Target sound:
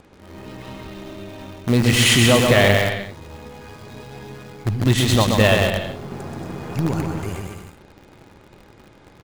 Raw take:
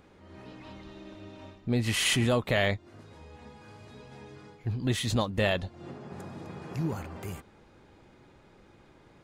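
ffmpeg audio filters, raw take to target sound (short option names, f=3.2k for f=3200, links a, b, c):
-filter_complex "[0:a]lowpass=11k,aecho=1:1:130|227.5|300.6|355.5|396.6:0.631|0.398|0.251|0.158|0.1,asplit=2[a][b];[b]acrusher=bits=5:dc=4:mix=0:aa=0.000001,volume=-5dB[c];[a][c]amix=inputs=2:normalize=0,volume=6dB"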